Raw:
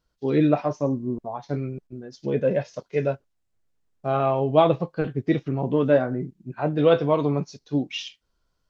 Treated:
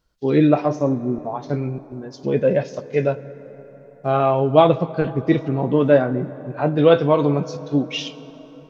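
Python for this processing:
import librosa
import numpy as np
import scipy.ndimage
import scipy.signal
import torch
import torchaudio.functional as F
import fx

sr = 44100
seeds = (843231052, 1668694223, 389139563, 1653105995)

y = fx.rev_plate(x, sr, seeds[0], rt60_s=4.9, hf_ratio=0.45, predelay_ms=0, drr_db=15.5)
y = y * librosa.db_to_amplitude(4.5)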